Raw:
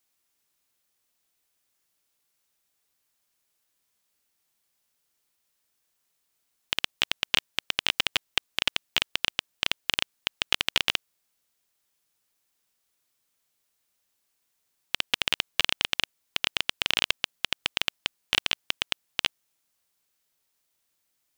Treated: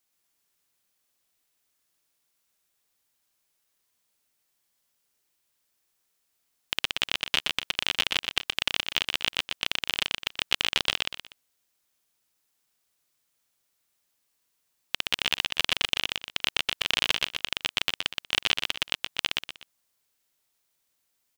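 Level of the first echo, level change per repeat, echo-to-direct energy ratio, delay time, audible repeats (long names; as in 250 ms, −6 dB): −3.0 dB, −9.5 dB, −2.5 dB, 122 ms, 3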